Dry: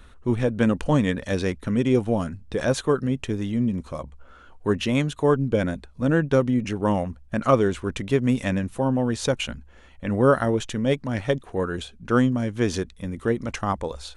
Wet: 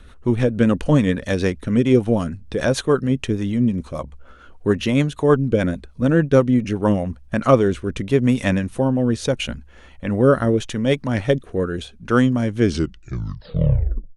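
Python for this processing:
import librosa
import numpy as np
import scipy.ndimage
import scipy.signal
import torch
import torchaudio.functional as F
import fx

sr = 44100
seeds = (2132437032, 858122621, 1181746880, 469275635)

y = fx.tape_stop_end(x, sr, length_s=1.58)
y = fx.notch(y, sr, hz=7400.0, q=14.0)
y = fx.rotary_switch(y, sr, hz=6.7, then_hz=0.8, switch_at_s=6.27)
y = y * librosa.db_to_amplitude(6.0)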